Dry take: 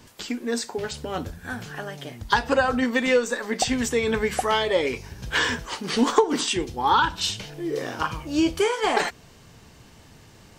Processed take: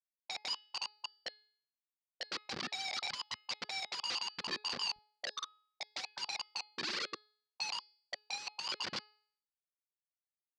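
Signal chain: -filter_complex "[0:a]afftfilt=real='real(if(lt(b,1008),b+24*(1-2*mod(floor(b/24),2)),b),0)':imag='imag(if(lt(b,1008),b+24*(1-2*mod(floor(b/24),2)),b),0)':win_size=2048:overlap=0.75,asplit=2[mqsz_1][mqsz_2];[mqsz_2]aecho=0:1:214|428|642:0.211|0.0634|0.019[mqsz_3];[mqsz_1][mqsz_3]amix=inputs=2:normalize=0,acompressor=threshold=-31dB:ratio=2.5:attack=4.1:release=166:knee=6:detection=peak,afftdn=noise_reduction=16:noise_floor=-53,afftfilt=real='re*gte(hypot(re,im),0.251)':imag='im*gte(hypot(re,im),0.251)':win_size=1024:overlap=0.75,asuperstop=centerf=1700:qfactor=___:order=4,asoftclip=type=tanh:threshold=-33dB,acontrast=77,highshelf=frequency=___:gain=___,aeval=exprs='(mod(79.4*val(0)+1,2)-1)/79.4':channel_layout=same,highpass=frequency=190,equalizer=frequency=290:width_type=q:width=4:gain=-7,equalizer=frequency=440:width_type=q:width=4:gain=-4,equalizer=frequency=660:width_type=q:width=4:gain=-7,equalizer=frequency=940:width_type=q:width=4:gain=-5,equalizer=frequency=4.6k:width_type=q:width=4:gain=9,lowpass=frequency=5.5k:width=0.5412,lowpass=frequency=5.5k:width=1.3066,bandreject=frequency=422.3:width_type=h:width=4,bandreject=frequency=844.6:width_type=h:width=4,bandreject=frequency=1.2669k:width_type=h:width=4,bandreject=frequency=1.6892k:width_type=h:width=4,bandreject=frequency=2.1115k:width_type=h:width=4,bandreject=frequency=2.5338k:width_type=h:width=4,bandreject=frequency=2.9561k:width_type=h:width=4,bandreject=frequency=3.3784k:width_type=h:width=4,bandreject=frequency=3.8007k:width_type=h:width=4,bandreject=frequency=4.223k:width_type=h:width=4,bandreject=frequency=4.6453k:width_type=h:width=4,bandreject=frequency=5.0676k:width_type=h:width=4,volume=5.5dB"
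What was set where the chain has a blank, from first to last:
1.2, 2.4k, 3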